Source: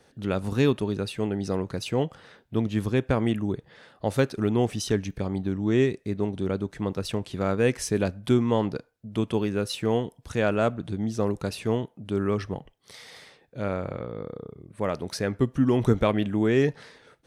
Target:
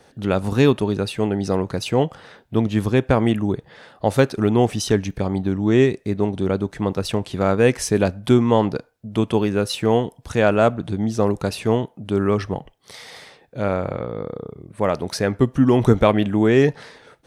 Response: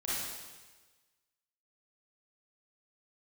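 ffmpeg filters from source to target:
-af "equalizer=frequency=790:width=1.5:gain=3.5,volume=6dB"

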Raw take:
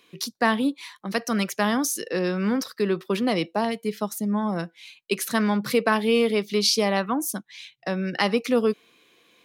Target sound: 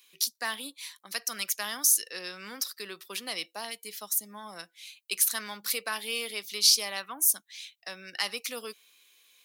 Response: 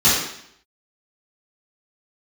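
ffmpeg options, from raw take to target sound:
-af "acontrast=20,aderivative"

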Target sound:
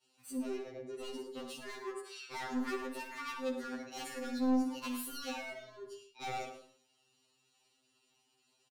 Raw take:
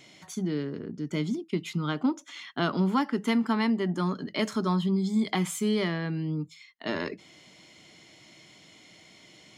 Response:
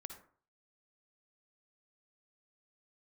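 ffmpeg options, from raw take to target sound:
-filter_complex "[0:a]agate=range=-33dB:threshold=-44dB:ratio=3:detection=peak,equalizer=frequency=230:width_type=o:width=2.5:gain=-3.5,bandreject=frequency=60:width_type=h:width=6,bandreject=frequency=120:width_type=h:width=6,bandreject=frequency=180:width_type=h:width=6,asetrate=58866,aresample=44100,atempo=0.749154,asoftclip=type=hard:threshold=-30.5dB,atempo=1.1,aecho=1:1:105:0.224[link_01];[1:a]atrim=start_sample=2205[link_02];[link_01][link_02]afir=irnorm=-1:irlink=0,afftfilt=real='re*2.45*eq(mod(b,6),0)':imag='im*2.45*eq(mod(b,6),0)':win_size=2048:overlap=0.75,volume=1.5dB"

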